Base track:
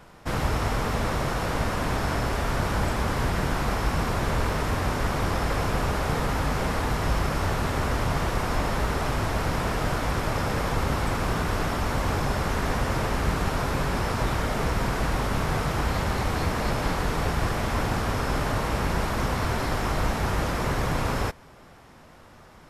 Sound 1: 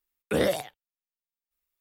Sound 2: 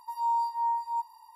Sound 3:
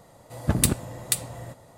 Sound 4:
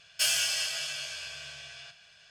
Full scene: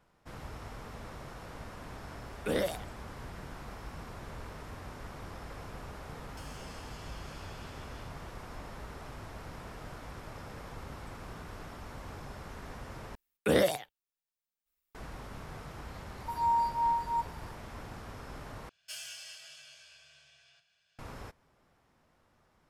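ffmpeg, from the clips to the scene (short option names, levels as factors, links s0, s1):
-filter_complex "[1:a]asplit=2[s0][s1];[4:a]asplit=2[s2][s3];[0:a]volume=0.112[s4];[s2]acompressor=threshold=0.0158:ratio=10:attack=1.1:release=335:knee=1:detection=peak[s5];[s4]asplit=3[s6][s7][s8];[s6]atrim=end=13.154[s9];[s1]atrim=end=1.8,asetpts=PTS-STARTPTS,volume=0.891[s10];[s7]atrim=start=14.946:end=18.694[s11];[s3]atrim=end=2.3,asetpts=PTS-STARTPTS,volume=0.141[s12];[s8]atrim=start=20.986[s13];[s0]atrim=end=1.8,asetpts=PTS-STARTPTS,volume=0.473,afade=t=in:d=0.004:c=hsin,afade=t=out:st=1.796:d=0.004:c=hsin,adelay=2150[s14];[s5]atrim=end=2.3,asetpts=PTS-STARTPTS,volume=0.237,afade=t=in:d=0.004:c=hsin,afade=t=out:st=2.296:d=0.004:c=hsin,adelay=272538S[s15];[2:a]atrim=end=1.35,asetpts=PTS-STARTPTS,volume=0.944,afade=t=in:d=0.004:c=hsin,afade=t=out:st=1.346:d=0.004:c=hsin,adelay=714420S[s16];[s9][s10]acrossfade=d=0.004:c1=hsin:c2=hsin[s17];[s17][s11]acrossfade=d=0.004:c1=hsin:c2=hsin[s18];[s18][s12]acrossfade=d=0.004:c1=hsin:c2=hsin[s19];[s19][s13]acrossfade=d=0.004:c1=hsin:c2=hsin[s20];[s20][s14][s15][s16]amix=inputs=4:normalize=0"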